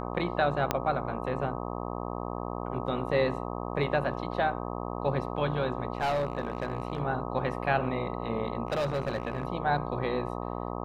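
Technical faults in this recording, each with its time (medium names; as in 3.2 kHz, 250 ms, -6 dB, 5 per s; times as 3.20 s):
buzz 60 Hz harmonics 21 -35 dBFS
0.71 s: pop -10 dBFS
5.93–7.00 s: clipped -24 dBFS
8.67–9.45 s: clipped -25 dBFS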